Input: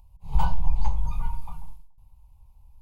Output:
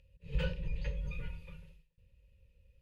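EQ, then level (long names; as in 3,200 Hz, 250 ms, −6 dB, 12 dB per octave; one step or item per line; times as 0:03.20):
formant filter e
Butterworth band-reject 750 Hz, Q 1
low-shelf EQ 160 Hz +11 dB
+16.5 dB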